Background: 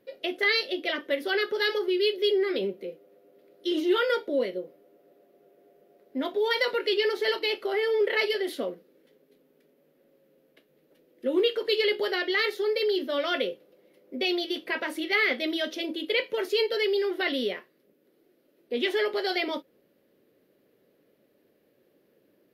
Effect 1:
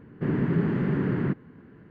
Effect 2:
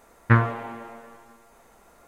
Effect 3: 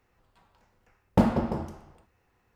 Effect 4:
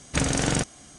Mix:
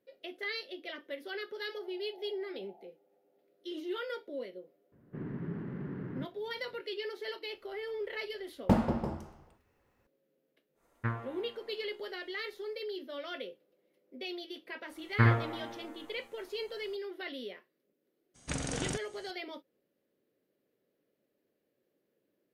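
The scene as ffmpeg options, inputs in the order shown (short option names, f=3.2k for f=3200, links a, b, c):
-filter_complex "[1:a]asplit=2[a][b];[2:a]asplit=2[c][d];[0:a]volume=-13.5dB[e];[a]asuperpass=centerf=750:order=20:qfactor=3.2[f];[b]adynamicsmooth=sensitivity=2.5:basefreq=2.5k[g];[d]aecho=1:1:61|72:0.562|0.531[h];[f]atrim=end=1.9,asetpts=PTS-STARTPTS,volume=-9dB,afade=t=in:d=0.004:c=hsin,afade=t=out:st=1.896:d=0.004:c=hsin,adelay=1530[i];[g]atrim=end=1.9,asetpts=PTS-STARTPTS,volume=-14.5dB,afade=t=in:d=0.004:c=hsin,afade=t=out:st=1.896:d=0.004:c=hsin,adelay=4920[j];[3:a]atrim=end=2.55,asetpts=PTS-STARTPTS,volume=-4.5dB,afade=t=in:d=0.004:c=hsin,afade=t=out:st=2.546:d=0.004:c=hsin,adelay=7520[k];[c]atrim=end=2.07,asetpts=PTS-STARTPTS,volume=-16.5dB,afade=t=in:d=0.1,afade=t=out:st=1.97:d=0.1,adelay=473634S[l];[h]atrim=end=2.07,asetpts=PTS-STARTPTS,volume=-8dB,afade=t=in:d=0.004:c=hsin,afade=t=out:st=2.066:d=0.004:c=hsin,adelay=14890[m];[4:a]atrim=end=0.98,asetpts=PTS-STARTPTS,volume=-12dB,afade=t=in:d=0.02,afade=t=out:st=0.96:d=0.02,adelay=18340[n];[e][i][j][k][l][m][n]amix=inputs=7:normalize=0"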